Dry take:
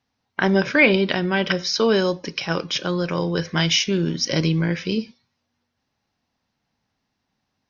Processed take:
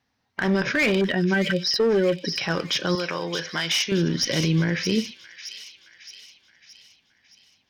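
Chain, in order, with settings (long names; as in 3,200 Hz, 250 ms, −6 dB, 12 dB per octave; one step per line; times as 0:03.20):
0:01.01–0:02.32: expanding power law on the bin magnitudes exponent 1.9
asymmetric clip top −17.5 dBFS, bottom −9 dBFS
parametric band 1,800 Hz +5 dB 0.4 octaves
brickwall limiter −14.5 dBFS, peak gain reduction 8 dB
0:02.95–0:03.92: high-pass filter 620 Hz 6 dB per octave
delay with a high-pass on its return 620 ms, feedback 50%, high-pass 2,900 Hz, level −6.5 dB
level +1.5 dB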